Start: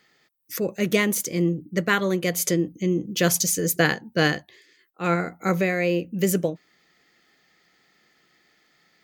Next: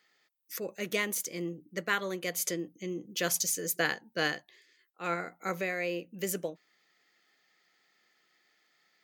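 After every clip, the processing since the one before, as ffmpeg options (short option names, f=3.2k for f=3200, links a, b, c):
-af "highpass=f=540:p=1,volume=-7dB"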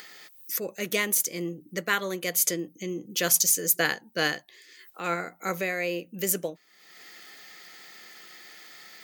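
-af "crystalizer=i=1:c=0,acompressor=mode=upward:threshold=-36dB:ratio=2.5,volume=3.5dB"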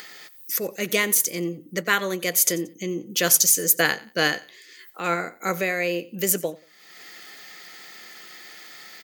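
-af "aecho=1:1:90|180:0.0944|0.0274,volume=4.5dB"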